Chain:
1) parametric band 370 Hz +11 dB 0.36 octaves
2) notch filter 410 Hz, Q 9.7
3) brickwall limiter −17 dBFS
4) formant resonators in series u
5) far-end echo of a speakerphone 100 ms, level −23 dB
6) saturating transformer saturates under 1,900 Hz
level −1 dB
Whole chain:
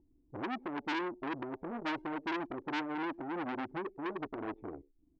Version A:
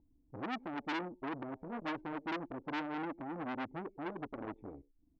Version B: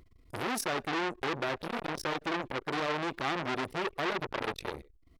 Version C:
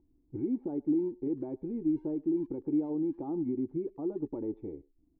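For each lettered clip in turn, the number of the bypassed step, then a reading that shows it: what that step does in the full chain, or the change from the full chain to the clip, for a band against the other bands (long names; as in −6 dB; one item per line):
1, 125 Hz band +4.0 dB
4, 250 Hz band −6.5 dB
6, change in crest factor −5.5 dB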